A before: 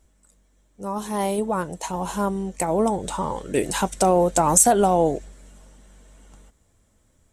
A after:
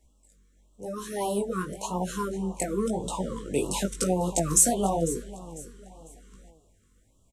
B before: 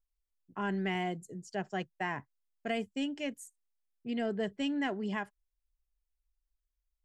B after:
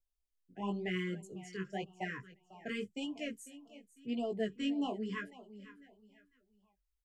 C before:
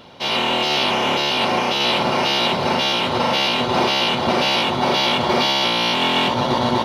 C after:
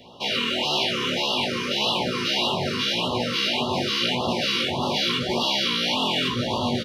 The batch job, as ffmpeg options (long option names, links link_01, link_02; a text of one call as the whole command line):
ffmpeg -i in.wav -filter_complex "[0:a]acrossover=split=220|3000[link_01][link_02][link_03];[link_02]acompressor=threshold=-20dB:ratio=6[link_04];[link_01][link_04][link_03]amix=inputs=3:normalize=0,aecho=1:1:499|998|1497:0.158|0.0523|0.0173,flanger=delay=16:depth=5.4:speed=0.95,afftfilt=real='re*(1-between(b*sr/1024,690*pow(1900/690,0.5+0.5*sin(2*PI*1.7*pts/sr))/1.41,690*pow(1900/690,0.5+0.5*sin(2*PI*1.7*pts/sr))*1.41))':imag='im*(1-between(b*sr/1024,690*pow(1900/690,0.5+0.5*sin(2*PI*1.7*pts/sr))/1.41,690*pow(1900/690,0.5+0.5*sin(2*PI*1.7*pts/sr))*1.41))':win_size=1024:overlap=0.75" out.wav